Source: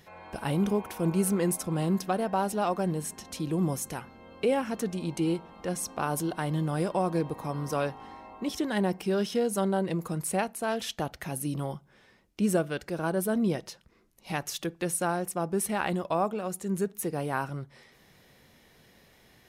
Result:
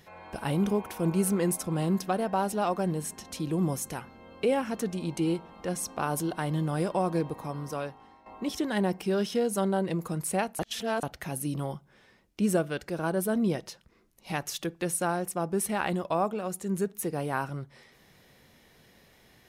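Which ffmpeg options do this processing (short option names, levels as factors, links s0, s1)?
-filter_complex "[0:a]asplit=4[s0][s1][s2][s3];[s0]atrim=end=8.26,asetpts=PTS-STARTPTS,afade=t=out:st=7.17:d=1.09:silence=0.223872[s4];[s1]atrim=start=8.26:end=10.592,asetpts=PTS-STARTPTS,afade=t=in:d=0.004:c=hsin:silence=0.223872[s5];[s2]atrim=start=10.588:end=11.032,asetpts=PTS-STARTPTS,areverse[s6];[s3]atrim=start=11.028[s7];[s4][s5]concat=n=2:v=0:a=1[s8];[s8][s6]acrossfade=d=0.004:c1=hsin:c2=hsin[s9];[s9][s7]acrossfade=d=0.004:c1=hsin:c2=hsin"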